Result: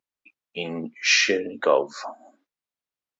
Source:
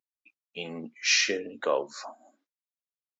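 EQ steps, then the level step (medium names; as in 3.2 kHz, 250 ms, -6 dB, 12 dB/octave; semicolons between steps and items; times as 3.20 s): treble shelf 5.3 kHz -10.5 dB; +7.5 dB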